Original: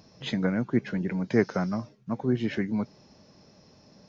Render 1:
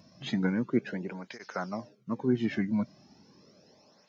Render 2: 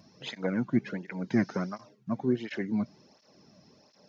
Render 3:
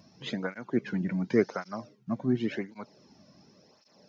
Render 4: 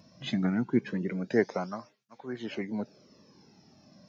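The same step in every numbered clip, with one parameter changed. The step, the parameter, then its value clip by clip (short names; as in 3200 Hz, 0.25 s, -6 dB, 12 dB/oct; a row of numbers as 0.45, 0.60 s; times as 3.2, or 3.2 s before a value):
tape flanging out of phase, nulls at: 0.36, 1.4, 0.91, 0.24 Hz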